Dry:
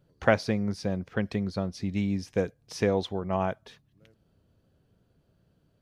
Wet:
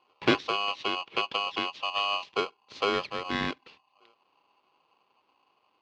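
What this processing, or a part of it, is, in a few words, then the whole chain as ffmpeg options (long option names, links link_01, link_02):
ring modulator pedal into a guitar cabinet: -filter_complex "[0:a]aeval=exprs='val(0)*sgn(sin(2*PI*910*n/s))':channel_layout=same,highpass=89,equalizer=frequency=340:width_type=q:width=4:gain=3,equalizer=frequency=720:width_type=q:width=4:gain=-8,equalizer=frequency=1500:width_type=q:width=4:gain=-8,lowpass=frequency=4100:width=0.5412,lowpass=frequency=4100:width=1.3066,asettb=1/sr,asplit=3[link_01][link_02][link_03];[link_01]atrim=end=0.534[link_04];[link_02]atrim=start=0.53:end=2.34,asetpts=PTS-STARTPTS,afade=type=in:duration=0.004:curve=qsin,afade=type=out:start_time=1.806:duration=0.004:curve=qsin,equalizer=frequency=2900:width_type=o:width=0.63:gain=7[link_05];[link_03]atrim=start=2.336[link_06];[link_04][link_05]acrossfade=duration=0.004:curve1=hsin:curve2=qsin[link_07];[link_07][link_06]acrossfade=duration=0.004:curve1=qsin:curve2=hsin"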